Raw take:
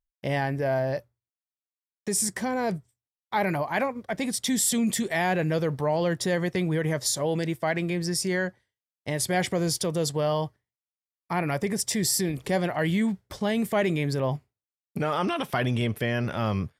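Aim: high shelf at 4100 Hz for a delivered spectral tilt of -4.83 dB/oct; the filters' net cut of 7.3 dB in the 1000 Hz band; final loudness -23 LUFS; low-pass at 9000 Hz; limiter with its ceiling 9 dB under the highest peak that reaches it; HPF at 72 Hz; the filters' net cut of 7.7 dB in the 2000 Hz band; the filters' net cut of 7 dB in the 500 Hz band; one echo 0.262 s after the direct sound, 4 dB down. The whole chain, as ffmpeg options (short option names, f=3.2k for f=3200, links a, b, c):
-af "highpass=72,lowpass=9k,equalizer=f=500:t=o:g=-7,equalizer=f=1k:t=o:g=-5.5,equalizer=f=2k:t=o:g=-8,highshelf=f=4.1k:g=3.5,alimiter=limit=-22dB:level=0:latency=1,aecho=1:1:262:0.631,volume=7dB"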